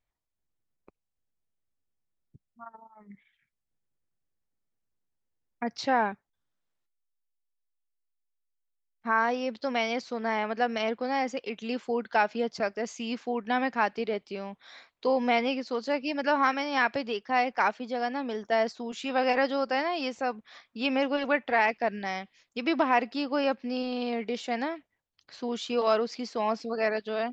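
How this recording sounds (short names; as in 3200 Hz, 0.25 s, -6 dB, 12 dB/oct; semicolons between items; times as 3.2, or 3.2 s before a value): noise floor -84 dBFS; spectral tilt -1.5 dB/oct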